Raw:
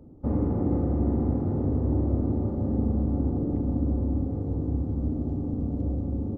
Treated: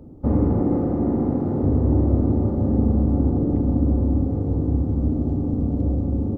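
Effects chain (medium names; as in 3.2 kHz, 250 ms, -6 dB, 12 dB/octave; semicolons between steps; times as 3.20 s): 0.62–1.63 s: peaking EQ 68 Hz -11 dB 1.3 oct; trim +6.5 dB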